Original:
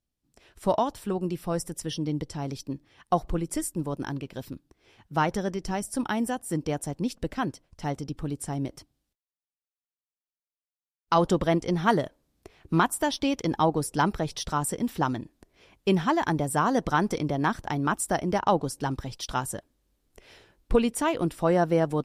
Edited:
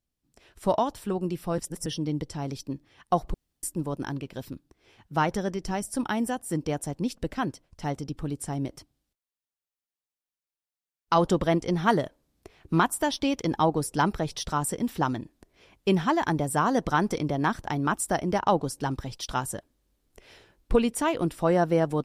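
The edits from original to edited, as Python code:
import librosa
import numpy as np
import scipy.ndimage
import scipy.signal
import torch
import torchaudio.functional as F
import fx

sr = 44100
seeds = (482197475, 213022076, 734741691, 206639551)

y = fx.edit(x, sr, fx.reverse_span(start_s=1.58, length_s=0.28),
    fx.room_tone_fill(start_s=3.34, length_s=0.29), tone=tone)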